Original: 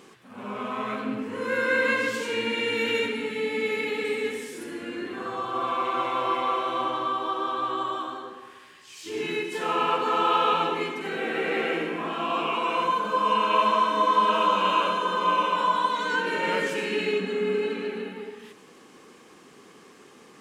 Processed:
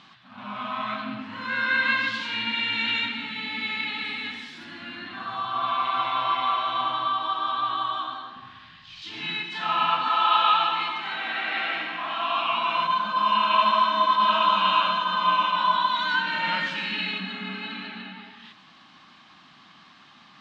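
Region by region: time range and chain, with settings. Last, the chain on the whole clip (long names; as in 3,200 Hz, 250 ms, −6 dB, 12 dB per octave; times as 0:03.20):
0:08.36–0:09.02: running median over 5 samples + bass and treble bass +15 dB, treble 0 dB
0:10.08–0:12.53: high-pass filter 330 Hz + echo with a time of its own for lows and highs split 1,400 Hz, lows 181 ms, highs 136 ms, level −9 dB
whole clip: drawn EQ curve 180 Hz 0 dB, 310 Hz −8 dB, 450 Hz −27 dB, 640 Hz −1 dB, 1,300 Hz +3 dB, 2,300 Hz +1 dB, 3,900 Hz +9 dB, 9,500 Hz −25 dB; level that may rise only so fast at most 180 dB per second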